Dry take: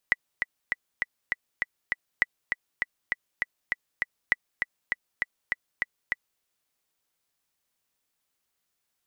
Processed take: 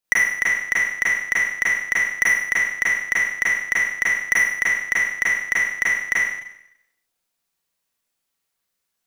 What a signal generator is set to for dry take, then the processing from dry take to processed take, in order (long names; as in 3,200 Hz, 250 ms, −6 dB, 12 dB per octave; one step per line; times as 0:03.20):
click track 200 BPM, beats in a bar 7, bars 3, 1,970 Hz, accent 5.5 dB −7.5 dBFS
leveller curve on the samples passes 3
four-comb reverb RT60 0.79 s, combs from 33 ms, DRR −7 dB